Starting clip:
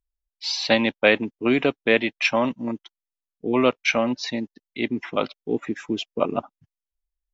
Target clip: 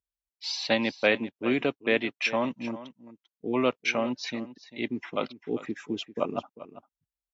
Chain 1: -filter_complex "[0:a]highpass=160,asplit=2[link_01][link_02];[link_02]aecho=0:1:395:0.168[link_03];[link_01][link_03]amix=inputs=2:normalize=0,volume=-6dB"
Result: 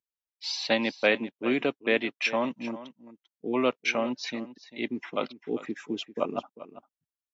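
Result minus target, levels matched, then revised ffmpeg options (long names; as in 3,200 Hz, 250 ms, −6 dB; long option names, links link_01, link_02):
125 Hz band −4.0 dB
-filter_complex "[0:a]highpass=60,asplit=2[link_01][link_02];[link_02]aecho=0:1:395:0.168[link_03];[link_01][link_03]amix=inputs=2:normalize=0,volume=-6dB"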